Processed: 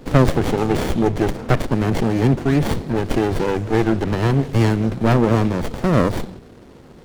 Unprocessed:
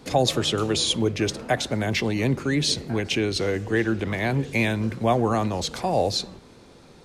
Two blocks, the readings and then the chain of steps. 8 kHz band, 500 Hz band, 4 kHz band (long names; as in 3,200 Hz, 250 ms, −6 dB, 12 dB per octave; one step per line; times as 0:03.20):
−7.0 dB, +4.5 dB, −8.0 dB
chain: windowed peak hold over 33 samples
level +7.5 dB